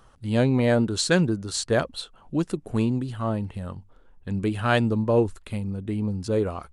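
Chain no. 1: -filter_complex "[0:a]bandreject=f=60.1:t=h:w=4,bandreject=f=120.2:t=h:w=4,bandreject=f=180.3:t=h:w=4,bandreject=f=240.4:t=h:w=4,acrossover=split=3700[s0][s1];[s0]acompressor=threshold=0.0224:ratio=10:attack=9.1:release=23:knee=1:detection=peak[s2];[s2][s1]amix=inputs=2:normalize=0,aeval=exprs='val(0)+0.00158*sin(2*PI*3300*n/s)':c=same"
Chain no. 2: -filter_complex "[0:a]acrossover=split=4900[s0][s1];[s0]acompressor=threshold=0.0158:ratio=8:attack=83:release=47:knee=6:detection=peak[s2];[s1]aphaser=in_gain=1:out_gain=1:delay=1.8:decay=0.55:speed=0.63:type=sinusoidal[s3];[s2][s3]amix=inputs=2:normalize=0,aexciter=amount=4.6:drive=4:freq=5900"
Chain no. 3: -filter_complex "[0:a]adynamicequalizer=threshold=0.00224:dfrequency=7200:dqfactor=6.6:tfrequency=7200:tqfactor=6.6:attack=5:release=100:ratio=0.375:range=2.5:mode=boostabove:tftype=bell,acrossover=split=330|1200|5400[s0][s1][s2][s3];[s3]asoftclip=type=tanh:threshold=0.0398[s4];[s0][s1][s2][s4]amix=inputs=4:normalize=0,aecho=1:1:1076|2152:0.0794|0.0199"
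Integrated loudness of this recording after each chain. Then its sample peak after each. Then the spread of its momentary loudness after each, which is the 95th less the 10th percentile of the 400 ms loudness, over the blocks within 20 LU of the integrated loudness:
-33.0 LUFS, -28.0 LUFS, -25.0 LUFS; -13.5 dBFS, -5.0 dBFS, -6.0 dBFS; 10 LU, 16 LU, 11 LU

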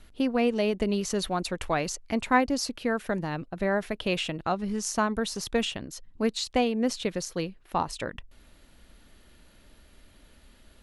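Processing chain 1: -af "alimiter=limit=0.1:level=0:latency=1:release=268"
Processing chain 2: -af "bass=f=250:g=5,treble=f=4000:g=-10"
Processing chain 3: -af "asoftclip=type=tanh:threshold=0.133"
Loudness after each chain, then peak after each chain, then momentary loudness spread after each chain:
-32.5 LUFS, -27.5 LUFS, -30.0 LUFS; -20.0 dBFS, -8.0 dBFS, -17.5 dBFS; 5 LU, 9 LU, 7 LU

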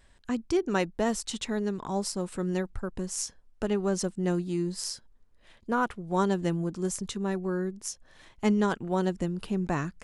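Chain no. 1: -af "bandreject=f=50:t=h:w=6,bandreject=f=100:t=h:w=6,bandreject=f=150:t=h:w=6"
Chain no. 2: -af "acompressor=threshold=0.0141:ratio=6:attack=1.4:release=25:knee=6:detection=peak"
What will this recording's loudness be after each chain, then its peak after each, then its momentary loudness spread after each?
-30.5 LUFS, -40.5 LUFS; -11.5 dBFS, -23.0 dBFS; 8 LU, 5 LU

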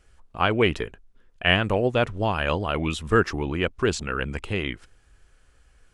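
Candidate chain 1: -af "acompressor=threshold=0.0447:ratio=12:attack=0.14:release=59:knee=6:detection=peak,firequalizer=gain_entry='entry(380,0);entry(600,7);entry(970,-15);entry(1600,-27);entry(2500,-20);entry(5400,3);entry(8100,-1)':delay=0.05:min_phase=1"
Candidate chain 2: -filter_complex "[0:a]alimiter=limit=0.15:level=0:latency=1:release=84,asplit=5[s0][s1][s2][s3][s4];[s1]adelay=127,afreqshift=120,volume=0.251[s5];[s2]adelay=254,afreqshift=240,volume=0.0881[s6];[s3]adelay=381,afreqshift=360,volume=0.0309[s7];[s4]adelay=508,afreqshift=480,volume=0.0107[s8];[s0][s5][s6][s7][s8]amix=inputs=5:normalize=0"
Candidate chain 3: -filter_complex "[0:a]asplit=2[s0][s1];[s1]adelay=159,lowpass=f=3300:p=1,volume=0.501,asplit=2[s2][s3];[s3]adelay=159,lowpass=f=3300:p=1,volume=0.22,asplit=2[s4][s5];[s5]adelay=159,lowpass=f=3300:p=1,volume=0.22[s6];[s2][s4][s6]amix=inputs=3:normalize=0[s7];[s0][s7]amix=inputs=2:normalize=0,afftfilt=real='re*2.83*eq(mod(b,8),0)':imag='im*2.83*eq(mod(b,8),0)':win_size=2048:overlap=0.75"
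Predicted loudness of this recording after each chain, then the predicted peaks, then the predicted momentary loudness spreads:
-35.5 LUFS, -28.5 LUFS, -27.0 LUFS; -23.0 dBFS, -14.0 dBFS, -8.0 dBFS; 9 LU, 9 LU, 11 LU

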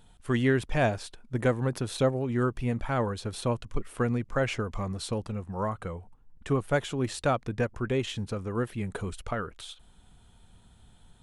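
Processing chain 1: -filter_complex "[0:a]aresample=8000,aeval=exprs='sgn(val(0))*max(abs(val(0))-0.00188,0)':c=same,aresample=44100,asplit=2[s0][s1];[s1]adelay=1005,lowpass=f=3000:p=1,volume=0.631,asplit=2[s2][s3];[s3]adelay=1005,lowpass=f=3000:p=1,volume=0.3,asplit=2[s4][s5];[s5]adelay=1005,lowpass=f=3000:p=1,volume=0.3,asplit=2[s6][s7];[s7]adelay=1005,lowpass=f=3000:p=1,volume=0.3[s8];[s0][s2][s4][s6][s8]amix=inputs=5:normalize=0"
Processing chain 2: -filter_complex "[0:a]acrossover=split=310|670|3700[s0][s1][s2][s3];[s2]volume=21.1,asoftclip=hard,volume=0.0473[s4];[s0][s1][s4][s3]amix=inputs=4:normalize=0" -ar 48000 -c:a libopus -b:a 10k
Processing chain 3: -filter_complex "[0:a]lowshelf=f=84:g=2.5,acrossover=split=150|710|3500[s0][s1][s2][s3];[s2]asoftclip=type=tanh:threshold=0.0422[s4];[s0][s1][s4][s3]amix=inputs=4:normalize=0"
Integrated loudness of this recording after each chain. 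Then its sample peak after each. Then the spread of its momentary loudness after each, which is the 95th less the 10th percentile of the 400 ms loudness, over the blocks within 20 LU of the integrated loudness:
-29.5 LUFS, -31.0 LUFS, -30.5 LUFS; -12.0 dBFS, -12.5 dBFS, -12.0 dBFS; 12 LU, 11 LU, 10 LU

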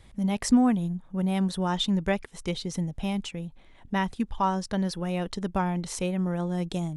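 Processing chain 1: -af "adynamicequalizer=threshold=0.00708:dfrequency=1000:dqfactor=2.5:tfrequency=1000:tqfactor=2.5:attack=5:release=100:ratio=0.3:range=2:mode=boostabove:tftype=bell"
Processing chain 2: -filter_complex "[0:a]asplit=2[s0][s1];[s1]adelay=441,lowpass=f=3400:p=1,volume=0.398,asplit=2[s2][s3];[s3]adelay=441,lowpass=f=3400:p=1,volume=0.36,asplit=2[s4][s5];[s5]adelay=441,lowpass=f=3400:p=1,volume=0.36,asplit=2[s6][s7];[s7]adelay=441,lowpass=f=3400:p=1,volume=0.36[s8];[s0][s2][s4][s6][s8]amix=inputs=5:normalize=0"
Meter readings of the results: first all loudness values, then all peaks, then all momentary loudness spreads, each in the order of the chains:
-27.5 LUFS, -27.5 LUFS; -11.5 dBFS, -11.5 dBFS; 9 LU, 8 LU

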